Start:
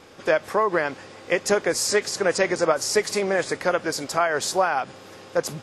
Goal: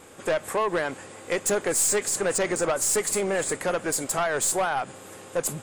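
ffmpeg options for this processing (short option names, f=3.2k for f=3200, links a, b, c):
-af "highshelf=f=6.5k:t=q:w=3:g=7,aeval=exprs='(tanh(8.91*val(0)+0.2)-tanh(0.2))/8.91':c=same"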